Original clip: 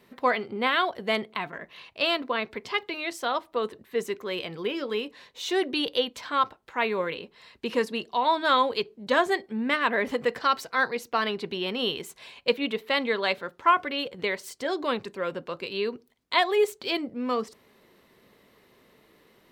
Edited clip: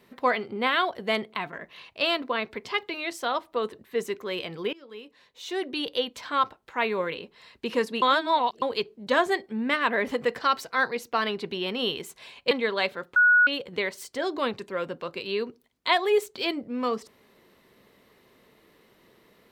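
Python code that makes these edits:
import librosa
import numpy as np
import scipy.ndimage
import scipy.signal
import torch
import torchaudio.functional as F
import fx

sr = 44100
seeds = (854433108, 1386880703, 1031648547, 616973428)

y = fx.edit(x, sr, fx.fade_in_from(start_s=4.73, length_s=1.58, floor_db=-21.5),
    fx.reverse_span(start_s=8.02, length_s=0.6),
    fx.cut(start_s=12.51, length_s=0.46),
    fx.bleep(start_s=13.62, length_s=0.31, hz=1460.0, db=-14.5), tone=tone)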